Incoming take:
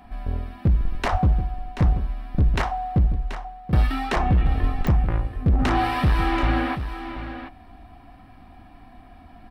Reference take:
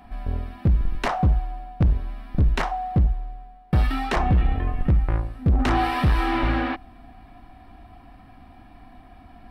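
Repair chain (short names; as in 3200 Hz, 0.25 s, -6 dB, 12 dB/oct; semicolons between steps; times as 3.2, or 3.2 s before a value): de-click; 1.11–1.23 HPF 140 Hz 24 dB/oct; 4.6–4.72 HPF 140 Hz 24 dB/oct; inverse comb 0.732 s -10.5 dB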